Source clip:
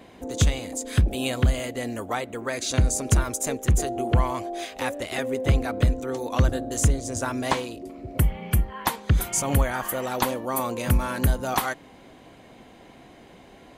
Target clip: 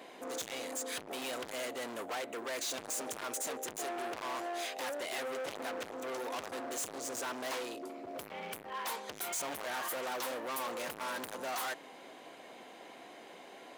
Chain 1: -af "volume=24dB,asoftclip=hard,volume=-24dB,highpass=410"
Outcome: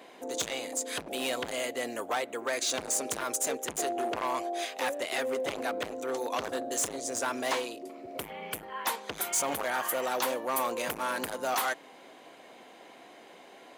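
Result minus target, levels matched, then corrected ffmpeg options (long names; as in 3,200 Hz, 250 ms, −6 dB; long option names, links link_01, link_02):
gain into a clipping stage and back: distortion −5 dB
-af "volume=35dB,asoftclip=hard,volume=-35dB,highpass=410"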